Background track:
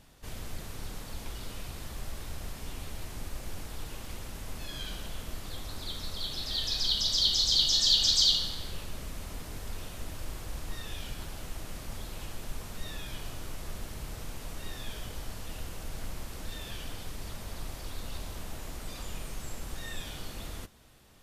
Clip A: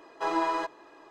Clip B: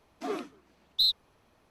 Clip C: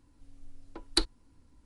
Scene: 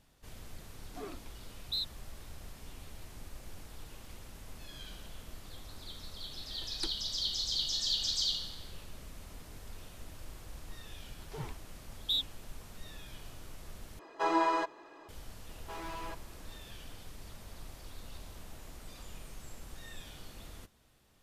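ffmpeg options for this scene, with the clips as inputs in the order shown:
ffmpeg -i bed.wav -i cue0.wav -i cue1.wav -i cue2.wav -filter_complex "[2:a]asplit=2[link_01][link_02];[1:a]asplit=2[link_03][link_04];[0:a]volume=-8.5dB[link_05];[link_02]afreqshift=-280[link_06];[link_04]asoftclip=type=hard:threshold=-33dB[link_07];[link_05]asplit=2[link_08][link_09];[link_08]atrim=end=13.994[link_10];[link_03]atrim=end=1.1,asetpts=PTS-STARTPTS,volume=-1dB[link_11];[link_09]atrim=start=15.086[link_12];[link_01]atrim=end=1.7,asetpts=PTS-STARTPTS,volume=-10.5dB,afade=type=in:duration=0.004:curve=hsin,afade=type=out:start_time=1.696:duration=0.004:curve=hsin,adelay=730[link_13];[3:a]atrim=end=1.65,asetpts=PTS-STARTPTS,volume=-12.5dB,afade=type=in:duration=0.004:curve=hsin,afade=type=out:start_time=1.646:duration=0.004:curve=hsin,adelay=5860[link_14];[link_06]atrim=end=1.7,asetpts=PTS-STARTPTS,volume=-7dB,afade=type=in:duration=0.004:curve=hsin,afade=type=out:start_time=1.696:duration=0.004:curve=hsin,adelay=11100[link_15];[link_07]atrim=end=1.1,asetpts=PTS-STARTPTS,volume=-8.5dB,afade=type=in:duration=0.004:curve=hsin,afade=type=out:start_time=1.096:duration=0.004:curve=hsin,adelay=15480[link_16];[link_10][link_11]acrossfade=duration=0.004:curve1=hsin:curve2=hsin[link_17];[link_17][link_12]acrossfade=duration=0.004:curve1=hsin:curve2=hsin[link_18];[link_18][link_13][link_14][link_15][link_16]amix=inputs=5:normalize=0" out.wav

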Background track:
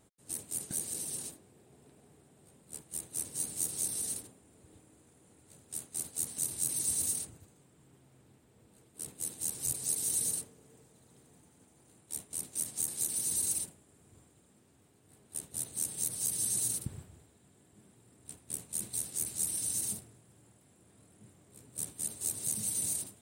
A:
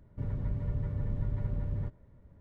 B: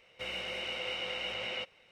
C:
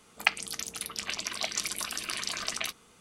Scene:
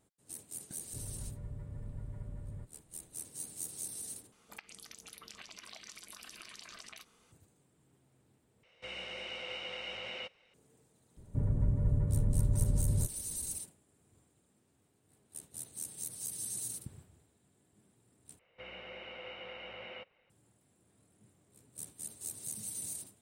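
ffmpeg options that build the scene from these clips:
ffmpeg -i bed.wav -i cue0.wav -i cue1.wav -i cue2.wav -filter_complex "[1:a]asplit=2[link_01][link_02];[2:a]asplit=2[link_03][link_04];[0:a]volume=-7.5dB[link_05];[3:a]acompressor=threshold=-38dB:ratio=6:attack=3.2:release=140:knee=1:detection=peak[link_06];[link_03]aresample=22050,aresample=44100[link_07];[link_02]tiltshelf=frequency=1500:gain=8[link_08];[link_04]lowpass=2200[link_09];[link_05]asplit=4[link_10][link_11][link_12][link_13];[link_10]atrim=end=4.324[link_14];[link_06]atrim=end=3,asetpts=PTS-STARTPTS,volume=-8dB[link_15];[link_11]atrim=start=7.316:end=8.634[link_16];[link_07]atrim=end=1.91,asetpts=PTS-STARTPTS,volume=-5dB[link_17];[link_12]atrim=start=10.536:end=18.394[link_18];[link_09]atrim=end=1.91,asetpts=PTS-STARTPTS,volume=-6.5dB[link_19];[link_13]atrim=start=20.296[link_20];[link_01]atrim=end=2.4,asetpts=PTS-STARTPTS,volume=-11dB,afade=type=in:duration=0.004:curve=hsin,afade=type=out:start_time=2.396:duration=0.004:curve=hsin,adelay=760[link_21];[link_08]atrim=end=2.4,asetpts=PTS-STARTPTS,volume=-4.5dB,afade=type=in:duration=0.004:curve=hsin,afade=type=out:start_time=2.396:duration=0.004:curve=hsin,adelay=11170[link_22];[link_14][link_15]acrossfade=duration=0.004:curve1=hsin:curve2=hsin[link_23];[link_23][link_16]acrossfade=duration=0.004:curve1=hsin:curve2=hsin[link_24];[link_24][link_17]acrossfade=duration=0.004:curve1=hsin:curve2=hsin[link_25];[link_25][link_18]acrossfade=duration=0.004:curve1=hsin:curve2=hsin[link_26];[link_26][link_19]acrossfade=duration=0.004:curve1=hsin:curve2=hsin[link_27];[link_27][link_20]acrossfade=duration=0.004:curve1=hsin:curve2=hsin[link_28];[link_28][link_21][link_22]amix=inputs=3:normalize=0" out.wav

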